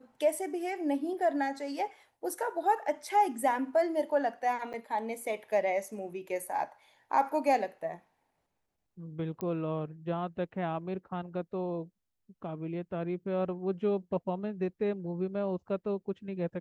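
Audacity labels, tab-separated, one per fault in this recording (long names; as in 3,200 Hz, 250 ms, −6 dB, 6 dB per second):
4.730000	4.740000	drop-out 7.8 ms
9.410000	9.410000	click −22 dBFS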